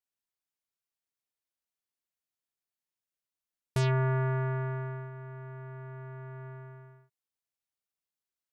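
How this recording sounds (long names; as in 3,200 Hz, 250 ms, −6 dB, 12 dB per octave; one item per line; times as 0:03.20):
background noise floor −93 dBFS
spectral slope −6.5 dB per octave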